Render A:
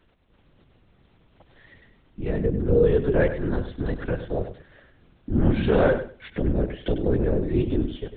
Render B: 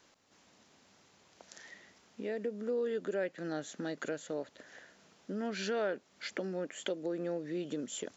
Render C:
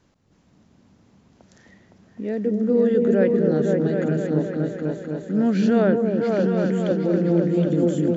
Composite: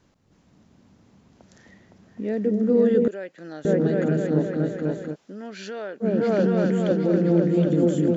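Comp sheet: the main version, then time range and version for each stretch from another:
C
0:03.08–0:03.65: punch in from B
0:05.13–0:06.03: punch in from B, crossfade 0.06 s
not used: A

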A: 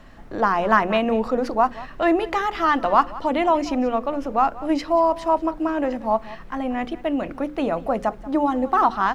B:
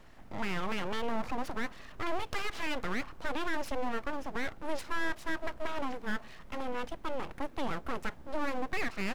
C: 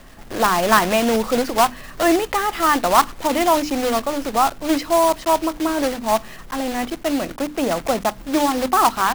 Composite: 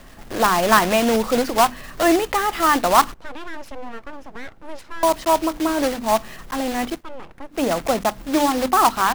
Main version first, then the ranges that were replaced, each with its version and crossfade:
C
0:03.14–0:05.03: punch in from B
0:06.99–0:07.55: punch in from B, crossfade 0.10 s
not used: A

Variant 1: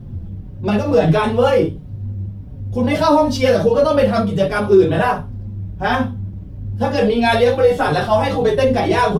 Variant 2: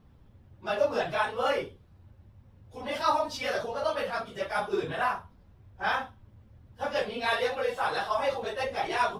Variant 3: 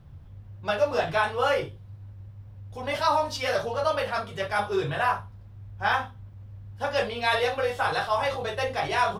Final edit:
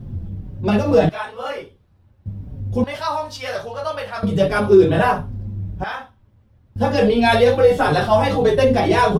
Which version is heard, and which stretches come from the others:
1
0:01.09–0:02.26: punch in from 2
0:02.84–0:04.23: punch in from 3
0:05.84–0:06.76: punch in from 2

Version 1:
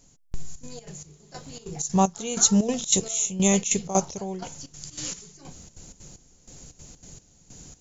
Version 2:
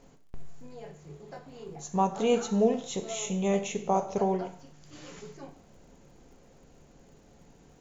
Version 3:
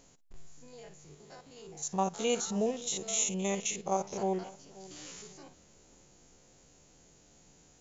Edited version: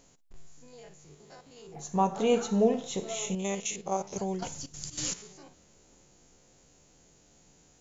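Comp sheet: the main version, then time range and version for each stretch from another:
3
0:01.74–0:03.35: punch in from 2
0:04.16–0:05.14: punch in from 1

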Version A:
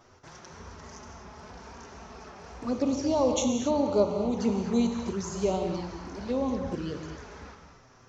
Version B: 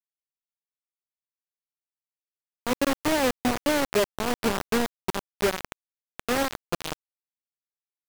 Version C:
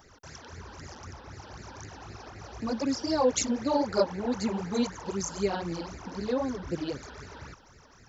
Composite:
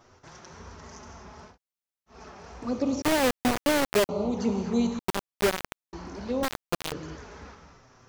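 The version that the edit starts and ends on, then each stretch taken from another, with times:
A
0:01.50–0:02.14: punch in from B, crossfade 0.16 s
0:03.02–0:04.09: punch in from B
0:04.99–0:05.93: punch in from B
0:06.43–0:06.92: punch in from B
not used: C

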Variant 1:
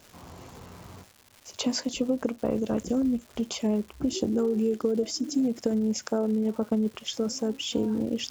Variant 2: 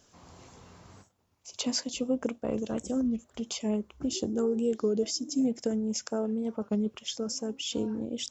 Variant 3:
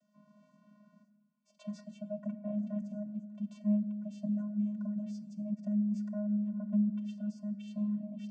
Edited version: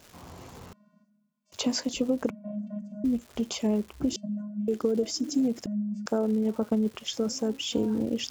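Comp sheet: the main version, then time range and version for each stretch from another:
1
0:00.73–0:01.52: punch in from 3
0:02.30–0:03.04: punch in from 3
0:04.16–0:04.68: punch in from 3
0:05.66–0:06.06: punch in from 3
not used: 2

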